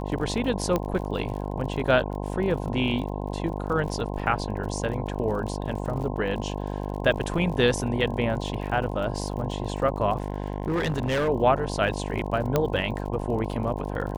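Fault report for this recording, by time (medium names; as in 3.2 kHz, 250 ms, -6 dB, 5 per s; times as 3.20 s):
buzz 50 Hz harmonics 21 -31 dBFS
crackle 46 per s -35 dBFS
0.76 s: pop -12 dBFS
10.18–11.29 s: clipped -21.5 dBFS
12.56 s: pop -9 dBFS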